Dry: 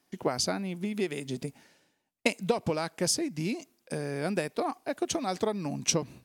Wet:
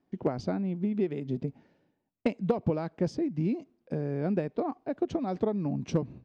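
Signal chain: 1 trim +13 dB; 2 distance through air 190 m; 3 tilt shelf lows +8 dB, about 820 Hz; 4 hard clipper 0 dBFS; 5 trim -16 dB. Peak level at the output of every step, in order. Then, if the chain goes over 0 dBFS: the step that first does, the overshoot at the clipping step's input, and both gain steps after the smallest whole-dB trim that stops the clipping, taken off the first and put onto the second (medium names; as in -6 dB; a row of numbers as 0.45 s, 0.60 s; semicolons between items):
+3.0 dBFS, +0.5 dBFS, +4.0 dBFS, 0.0 dBFS, -16.0 dBFS; step 1, 4.0 dB; step 1 +9 dB, step 5 -12 dB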